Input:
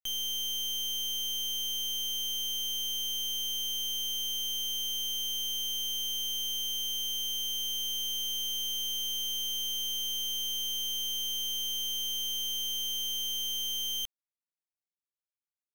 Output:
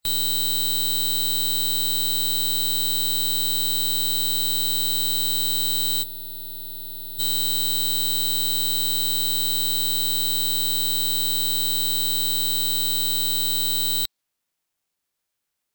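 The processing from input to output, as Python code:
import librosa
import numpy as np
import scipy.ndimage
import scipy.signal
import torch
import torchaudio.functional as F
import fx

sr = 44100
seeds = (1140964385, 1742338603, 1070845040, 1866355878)

p1 = fx.dynamic_eq(x, sr, hz=3100.0, q=1.7, threshold_db=-49.0, ratio=4.0, max_db=6)
p2 = fx.spec_erase(p1, sr, start_s=6.03, length_s=1.16, low_hz=770.0, high_hz=7600.0)
p3 = fx.fold_sine(p2, sr, drive_db=15, ceiling_db=-30.5)
p4 = p2 + (p3 * librosa.db_to_amplitude(-11.5))
p5 = fx.formant_shift(p4, sr, semitones=4)
y = p5 * librosa.db_to_amplitude(5.5)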